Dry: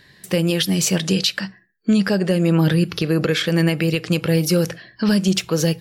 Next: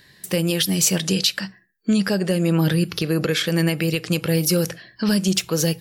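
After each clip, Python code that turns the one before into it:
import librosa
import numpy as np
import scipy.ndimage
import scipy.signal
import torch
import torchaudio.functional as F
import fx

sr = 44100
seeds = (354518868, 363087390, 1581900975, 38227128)

y = fx.high_shelf(x, sr, hz=6500.0, db=9.5)
y = F.gain(torch.from_numpy(y), -2.5).numpy()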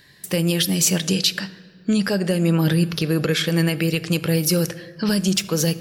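y = fx.room_shoebox(x, sr, seeds[0], volume_m3=3100.0, walls='mixed', distance_m=0.37)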